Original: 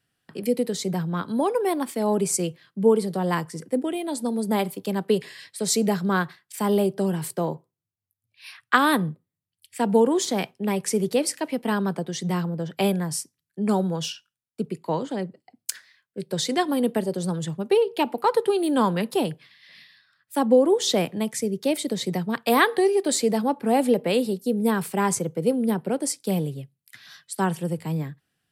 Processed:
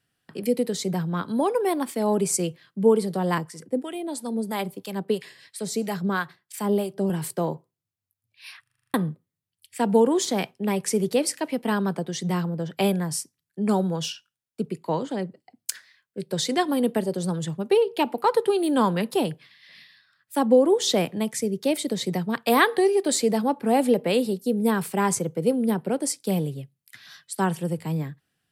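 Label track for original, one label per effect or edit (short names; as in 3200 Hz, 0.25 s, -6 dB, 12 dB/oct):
3.380000	7.100000	harmonic tremolo 3 Hz, crossover 770 Hz
8.620000	8.620000	stutter in place 0.04 s, 8 plays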